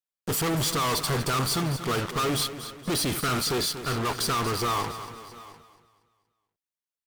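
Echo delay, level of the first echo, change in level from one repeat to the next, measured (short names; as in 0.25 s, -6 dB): 0.237 s, -12.0 dB, no steady repeat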